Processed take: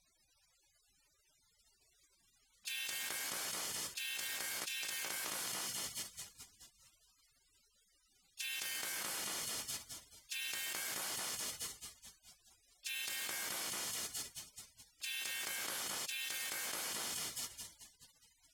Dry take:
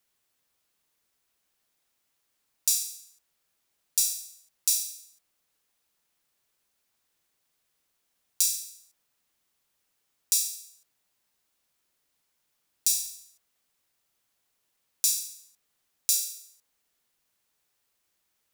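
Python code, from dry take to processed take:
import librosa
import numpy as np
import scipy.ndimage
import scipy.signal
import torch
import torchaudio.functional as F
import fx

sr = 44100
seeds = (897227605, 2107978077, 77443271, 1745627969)

y = fx.highpass(x, sr, hz=190.0, slope=6)
y = fx.echo_tape(y, sr, ms=214, feedback_pct=85, wet_db=-5.5, lp_hz=3600.0, drive_db=5.0, wow_cents=7)
y = fx.spec_gate(y, sr, threshold_db=-25, keep='weak')
y = 10.0 ** (-29.5 / 20.0) * np.tanh(y / 10.0 ** (-29.5 / 20.0))
y = scipy.signal.sosfilt(scipy.signal.butter(2, 6400.0, 'lowpass', fs=sr, output='sos'), y)
y = fx.high_shelf(y, sr, hz=4700.0, db=12.0)
y = fx.env_flatten(y, sr, amount_pct=100)
y = F.gain(torch.from_numpy(y), 2.5).numpy()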